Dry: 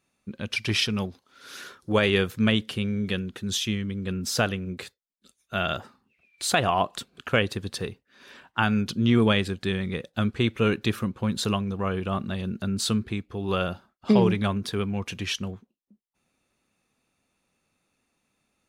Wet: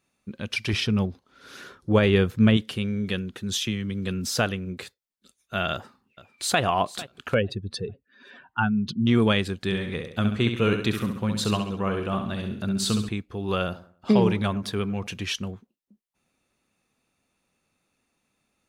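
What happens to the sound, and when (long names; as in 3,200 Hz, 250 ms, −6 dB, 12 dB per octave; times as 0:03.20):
0:00.73–0:02.57: spectral tilt −2 dB per octave
0:03.62–0:04.27: multiband upward and downward compressor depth 70%
0:05.72–0:06.61: delay throw 450 ms, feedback 45%, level −16.5 dB
0:07.34–0:09.07: expanding power law on the bin magnitudes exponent 1.9
0:09.64–0:13.09: repeating echo 67 ms, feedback 45%, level −7 dB
0:13.64–0:15.07: delay with a low-pass on its return 96 ms, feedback 30%, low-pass 1,400 Hz, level −15 dB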